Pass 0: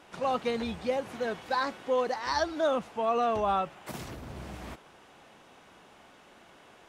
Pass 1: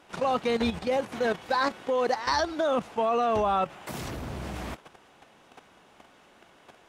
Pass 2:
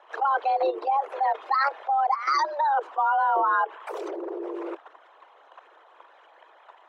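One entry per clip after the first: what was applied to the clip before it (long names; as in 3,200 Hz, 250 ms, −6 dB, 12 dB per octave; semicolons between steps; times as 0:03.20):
output level in coarse steps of 11 dB; level +8.5 dB
spectral envelope exaggerated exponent 2; frequency shifter +280 Hz; level +2.5 dB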